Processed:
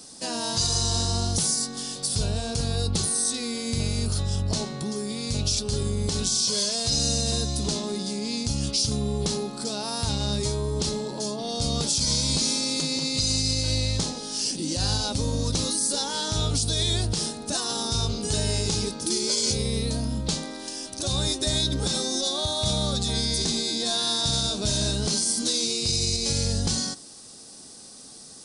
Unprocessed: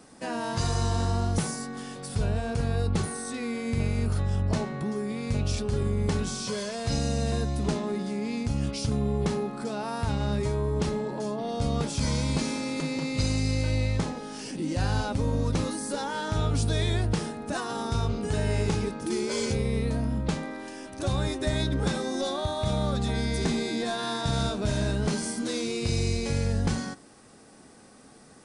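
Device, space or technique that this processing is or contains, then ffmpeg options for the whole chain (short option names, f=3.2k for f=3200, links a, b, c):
over-bright horn tweeter: -af "highshelf=f=3k:t=q:w=1.5:g=13,alimiter=limit=-14dB:level=0:latency=1:release=90"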